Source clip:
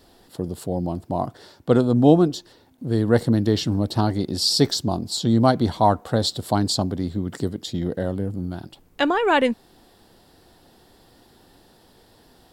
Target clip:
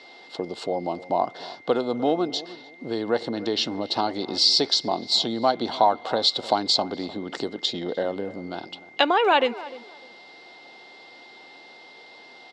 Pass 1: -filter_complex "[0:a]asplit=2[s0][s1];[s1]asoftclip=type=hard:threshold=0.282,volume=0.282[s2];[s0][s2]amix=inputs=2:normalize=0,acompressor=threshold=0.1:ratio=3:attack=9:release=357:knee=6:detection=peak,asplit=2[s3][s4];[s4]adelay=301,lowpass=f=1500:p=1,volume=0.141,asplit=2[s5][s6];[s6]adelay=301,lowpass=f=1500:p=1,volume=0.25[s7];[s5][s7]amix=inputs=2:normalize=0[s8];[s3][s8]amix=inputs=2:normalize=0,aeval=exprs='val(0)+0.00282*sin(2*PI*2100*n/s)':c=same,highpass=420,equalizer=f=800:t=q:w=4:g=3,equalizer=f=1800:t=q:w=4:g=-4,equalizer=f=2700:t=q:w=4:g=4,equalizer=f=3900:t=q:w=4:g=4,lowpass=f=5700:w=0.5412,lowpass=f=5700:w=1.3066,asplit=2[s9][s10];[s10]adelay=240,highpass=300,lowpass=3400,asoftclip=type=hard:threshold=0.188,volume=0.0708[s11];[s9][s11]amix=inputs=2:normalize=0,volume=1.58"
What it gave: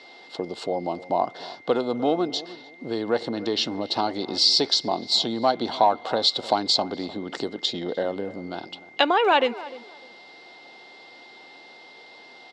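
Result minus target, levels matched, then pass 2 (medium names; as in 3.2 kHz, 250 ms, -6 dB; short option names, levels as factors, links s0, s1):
hard clipper: distortion +13 dB
-filter_complex "[0:a]asplit=2[s0][s1];[s1]asoftclip=type=hard:threshold=0.562,volume=0.282[s2];[s0][s2]amix=inputs=2:normalize=0,acompressor=threshold=0.1:ratio=3:attack=9:release=357:knee=6:detection=peak,asplit=2[s3][s4];[s4]adelay=301,lowpass=f=1500:p=1,volume=0.141,asplit=2[s5][s6];[s6]adelay=301,lowpass=f=1500:p=1,volume=0.25[s7];[s5][s7]amix=inputs=2:normalize=0[s8];[s3][s8]amix=inputs=2:normalize=0,aeval=exprs='val(0)+0.00282*sin(2*PI*2100*n/s)':c=same,highpass=420,equalizer=f=800:t=q:w=4:g=3,equalizer=f=1800:t=q:w=4:g=-4,equalizer=f=2700:t=q:w=4:g=4,equalizer=f=3900:t=q:w=4:g=4,lowpass=f=5700:w=0.5412,lowpass=f=5700:w=1.3066,asplit=2[s9][s10];[s10]adelay=240,highpass=300,lowpass=3400,asoftclip=type=hard:threshold=0.188,volume=0.0708[s11];[s9][s11]amix=inputs=2:normalize=0,volume=1.58"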